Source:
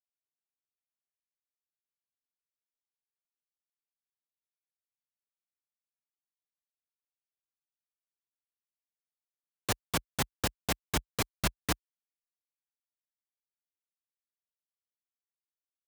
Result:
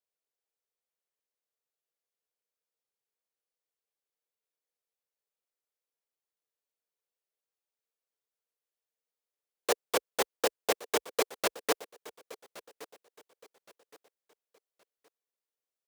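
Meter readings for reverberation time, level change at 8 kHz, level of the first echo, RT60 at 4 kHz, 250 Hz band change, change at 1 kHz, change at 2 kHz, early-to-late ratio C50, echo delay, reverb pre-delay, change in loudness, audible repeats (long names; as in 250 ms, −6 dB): no reverb audible, 0.0 dB, −18.5 dB, no reverb audible, −4.5 dB, +2.5 dB, +0.5 dB, no reverb audible, 1,119 ms, no reverb audible, +1.5 dB, 2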